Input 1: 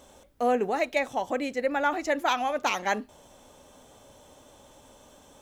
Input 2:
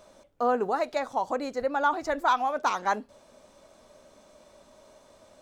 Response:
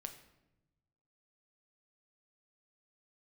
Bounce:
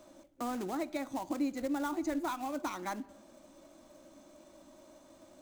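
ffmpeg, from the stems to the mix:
-filter_complex "[0:a]acompressor=threshold=-34dB:ratio=6,volume=-5.5dB[link_01];[1:a]acrusher=bits=3:mode=log:mix=0:aa=0.000001,volume=-7.5dB,asplit=3[link_02][link_03][link_04];[link_03]volume=-6dB[link_05];[link_04]apad=whole_len=238834[link_06];[link_01][link_06]sidechaingate=range=-33dB:threshold=-51dB:ratio=16:detection=peak[link_07];[2:a]atrim=start_sample=2205[link_08];[link_05][link_08]afir=irnorm=-1:irlink=0[link_09];[link_07][link_02][link_09]amix=inputs=3:normalize=0,superequalizer=6b=2:7b=0.316:15b=1.41,acrossover=split=120[link_10][link_11];[link_11]acompressor=threshold=-41dB:ratio=2[link_12];[link_10][link_12]amix=inputs=2:normalize=0,equalizer=frequency=300:width_type=o:width=1.3:gain=7"

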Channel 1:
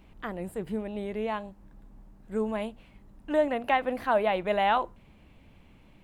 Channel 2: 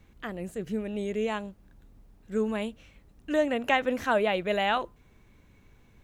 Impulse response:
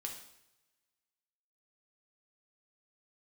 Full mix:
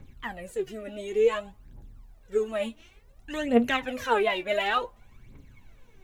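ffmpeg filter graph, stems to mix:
-filter_complex "[0:a]alimiter=limit=-20.5dB:level=0:latency=1,volume=-9.5dB,asplit=2[link_01][link_02];[link_02]volume=-8dB[link_03];[1:a]aphaser=in_gain=1:out_gain=1:delay=3.6:decay=0.74:speed=0.56:type=triangular,volume=-1,volume=3dB[link_04];[2:a]atrim=start_sample=2205[link_05];[link_03][link_05]afir=irnorm=-1:irlink=0[link_06];[link_01][link_04][link_06]amix=inputs=3:normalize=0,flanger=delay=7.2:depth=1.8:regen=56:speed=1.3:shape=triangular"

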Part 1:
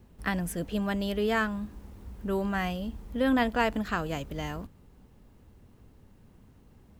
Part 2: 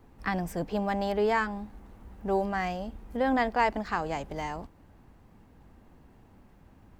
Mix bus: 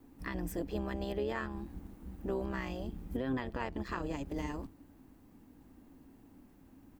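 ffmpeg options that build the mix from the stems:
ffmpeg -i stem1.wav -i stem2.wav -filter_complex "[0:a]lowpass=4700,lowshelf=frequency=160:gain=9,tremolo=f=130:d=0.974,volume=-5dB[link_01];[1:a]aemphasis=mode=production:type=50kf,acompressor=threshold=-35dB:ratio=3,equalizer=frequency=280:width=2.4:gain=14.5,volume=-1,adelay=1.9,volume=-7.5dB,asplit=2[link_02][link_03];[link_03]apad=whole_len=308690[link_04];[link_01][link_04]sidechaingate=range=-33dB:threshold=-52dB:ratio=16:detection=peak[link_05];[link_05][link_02]amix=inputs=2:normalize=0,alimiter=level_in=1dB:limit=-24dB:level=0:latency=1:release=170,volume=-1dB" out.wav

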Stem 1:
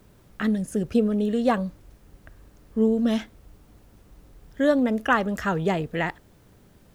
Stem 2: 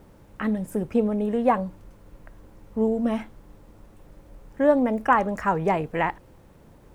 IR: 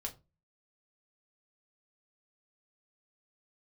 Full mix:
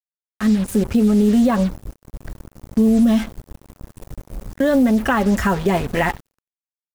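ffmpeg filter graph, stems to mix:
-filter_complex "[0:a]bass=frequency=250:gain=6,treble=frequency=4000:gain=0,volume=-2dB[link_01];[1:a]bass=frequency=250:gain=3,treble=frequency=4000:gain=9,alimiter=limit=-16.5dB:level=0:latency=1:release=75,lowshelf=frequency=230:gain=4,volume=-1,adelay=6.6,volume=-3.5dB,asplit=2[link_02][link_03];[link_03]apad=whole_len=306390[link_04];[link_01][link_04]sidechaingate=range=-33dB:threshold=-40dB:ratio=16:detection=peak[link_05];[link_05][link_02]amix=inputs=2:normalize=0,dynaudnorm=framelen=120:gausssize=11:maxgain=13dB,acrusher=bits=4:mix=0:aa=0.5,alimiter=limit=-8.5dB:level=0:latency=1:release=77"

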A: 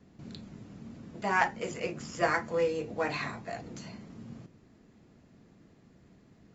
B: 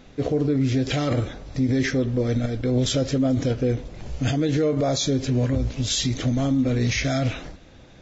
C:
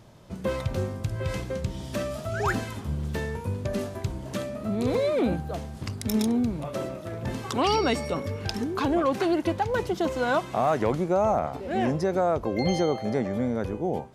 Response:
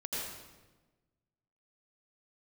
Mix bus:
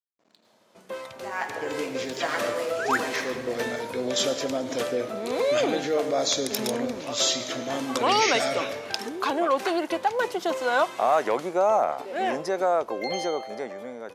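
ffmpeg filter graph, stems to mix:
-filter_complex "[0:a]equalizer=frequency=200:width=6.9:gain=4,aeval=exprs='sgn(val(0))*max(abs(val(0))-0.00501,0)':channel_layout=same,volume=-10.5dB,asplit=3[link_01][link_02][link_03];[link_02]volume=-6dB[link_04];[1:a]adelay=1300,volume=-9.5dB,asplit=2[link_05][link_06];[link_06]volume=-13dB[link_07];[2:a]adelay=450,volume=-5.5dB[link_08];[link_03]apad=whole_len=410796[link_09];[link_05][link_09]sidechaincompress=threshold=-47dB:ratio=8:attack=16:release=178[link_10];[3:a]atrim=start_sample=2205[link_11];[link_04][link_07]amix=inputs=2:normalize=0[link_12];[link_12][link_11]afir=irnorm=-1:irlink=0[link_13];[link_01][link_10][link_08][link_13]amix=inputs=4:normalize=0,highpass=490,dynaudnorm=framelen=250:gausssize=13:maxgain=9dB"

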